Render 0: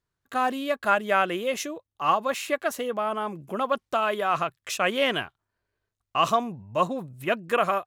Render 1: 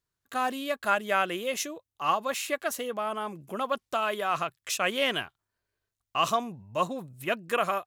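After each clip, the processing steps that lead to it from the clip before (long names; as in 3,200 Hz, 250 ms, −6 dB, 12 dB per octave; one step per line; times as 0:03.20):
high-shelf EQ 3,100 Hz +7.5 dB
level −4.5 dB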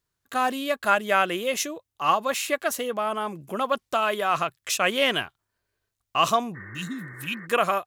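healed spectral selection 0:06.58–0:07.44, 320–2,200 Hz after
level +4.5 dB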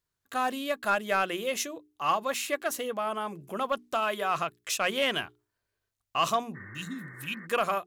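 soft clipping −11 dBFS, distortion −20 dB
mains-hum notches 60/120/180/240/300/360/420 Hz
level −4 dB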